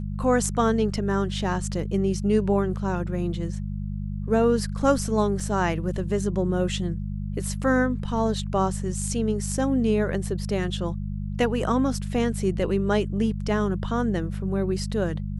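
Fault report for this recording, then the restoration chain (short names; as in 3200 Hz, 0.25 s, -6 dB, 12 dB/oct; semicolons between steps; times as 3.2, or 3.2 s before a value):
hum 50 Hz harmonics 4 -30 dBFS
5.4 gap 3.5 ms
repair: de-hum 50 Hz, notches 4; interpolate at 5.4, 3.5 ms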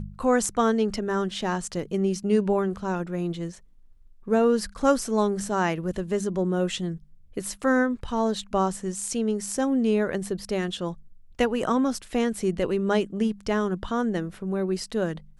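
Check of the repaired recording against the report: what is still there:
none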